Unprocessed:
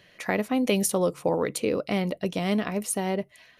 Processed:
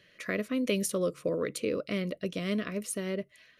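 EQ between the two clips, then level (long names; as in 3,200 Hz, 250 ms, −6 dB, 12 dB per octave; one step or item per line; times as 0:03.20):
Butterworth band-reject 830 Hz, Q 1.8
low-shelf EQ 220 Hz −3 dB
high-shelf EQ 9,400 Hz −6 dB
−4.0 dB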